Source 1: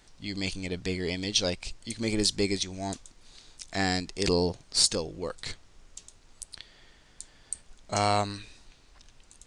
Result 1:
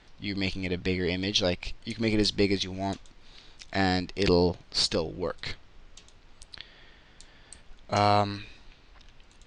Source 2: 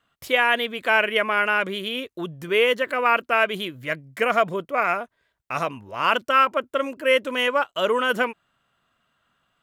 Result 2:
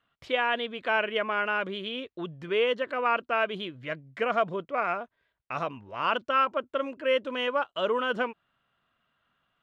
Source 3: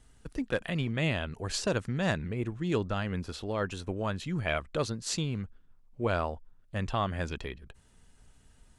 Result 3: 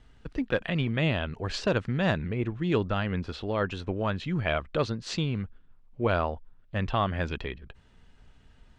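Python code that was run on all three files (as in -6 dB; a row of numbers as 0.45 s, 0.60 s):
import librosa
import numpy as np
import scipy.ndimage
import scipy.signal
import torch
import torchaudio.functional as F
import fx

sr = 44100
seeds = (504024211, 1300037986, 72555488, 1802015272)

y = scipy.signal.sosfilt(scipy.signal.cheby1(2, 1.0, 3300.0, 'lowpass', fs=sr, output='sos'), x)
y = fx.dynamic_eq(y, sr, hz=2100.0, q=1.8, threshold_db=-37.0, ratio=4.0, max_db=-7)
y = y * 10.0 ** (-30 / 20.0) / np.sqrt(np.mean(np.square(y)))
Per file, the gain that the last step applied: +4.0 dB, -4.0 dB, +4.5 dB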